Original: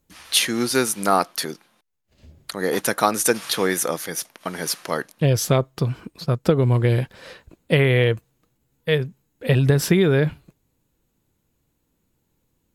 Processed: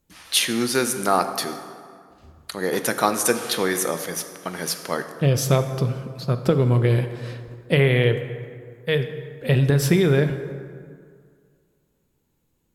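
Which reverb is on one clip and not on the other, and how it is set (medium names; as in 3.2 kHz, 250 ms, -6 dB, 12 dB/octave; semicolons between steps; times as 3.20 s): plate-style reverb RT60 2.1 s, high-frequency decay 0.55×, DRR 8 dB; trim -1.5 dB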